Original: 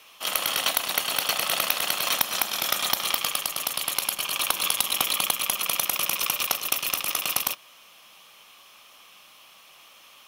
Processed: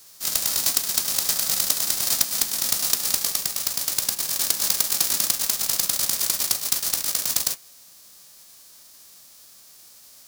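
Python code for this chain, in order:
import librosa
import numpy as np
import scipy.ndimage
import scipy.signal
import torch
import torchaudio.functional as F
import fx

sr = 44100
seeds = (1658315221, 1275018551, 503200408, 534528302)

y = fx.envelope_flatten(x, sr, power=0.1)
y = fx.high_shelf_res(y, sr, hz=3600.0, db=8.0, q=1.5)
y = fx.mod_noise(y, sr, seeds[0], snr_db=11)
y = y * librosa.db_to_amplitude(-5.0)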